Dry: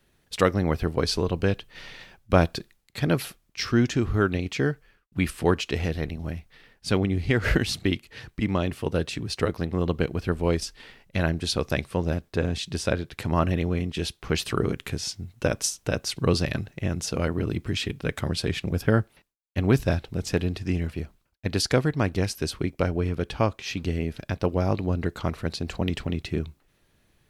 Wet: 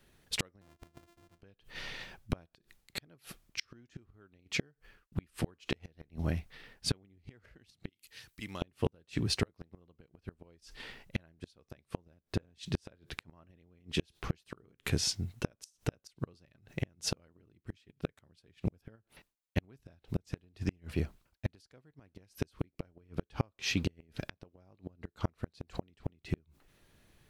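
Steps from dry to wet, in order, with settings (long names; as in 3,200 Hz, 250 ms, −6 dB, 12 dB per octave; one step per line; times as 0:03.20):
0:00.61–0:01.42: samples sorted by size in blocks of 128 samples
0:07.89–0:08.62: first-order pre-emphasis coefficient 0.9
0:18.95–0:19.62: downward compressor 8 to 1, threshold −23 dBFS, peak gain reduction 7 dB
gate with flip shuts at −18 dBFS, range −38 dB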